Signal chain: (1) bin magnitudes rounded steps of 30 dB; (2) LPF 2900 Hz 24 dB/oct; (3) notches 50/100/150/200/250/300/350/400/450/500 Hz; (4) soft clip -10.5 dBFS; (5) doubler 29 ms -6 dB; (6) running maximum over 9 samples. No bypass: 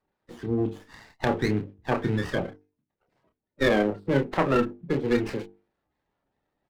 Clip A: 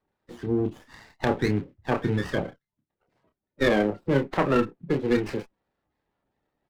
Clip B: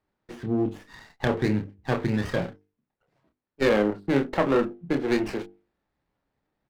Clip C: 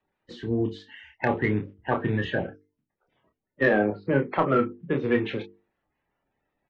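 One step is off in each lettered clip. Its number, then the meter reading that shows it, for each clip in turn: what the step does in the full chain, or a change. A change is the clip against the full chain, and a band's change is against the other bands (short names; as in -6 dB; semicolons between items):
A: 3, momentary loudness spread change -3 LU; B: 1, 250 Hz band +1.5 dB; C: 6, distortion -11 dB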